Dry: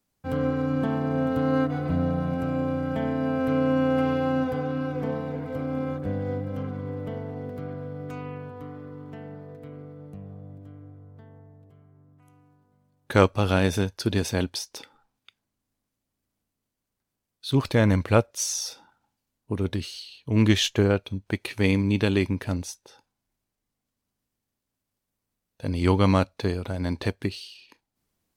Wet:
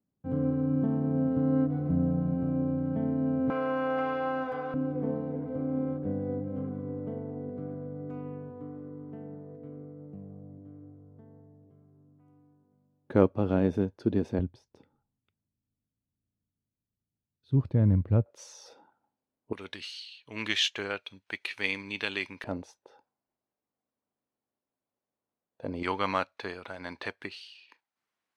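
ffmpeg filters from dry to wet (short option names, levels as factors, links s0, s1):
-af "asetnsamples=n=441:p=0,asendcmd='3.5 bandpass f 1100;4.74 bandpass f 280;14.39 bandpass f 110;18.26 bandpass f 480;19.53 bandpass f 2400;22.44 bandpass f 600;25.83 bandpass f 1600',bandpass=f=200:t=q:w=0.89:csg=0"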